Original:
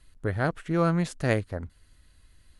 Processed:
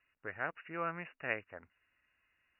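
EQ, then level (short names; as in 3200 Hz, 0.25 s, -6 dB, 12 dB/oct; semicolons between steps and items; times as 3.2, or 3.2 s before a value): brick-wall FIR low-pass 2900 Hz; air absorption 160 m; differentiator; +8.5 dB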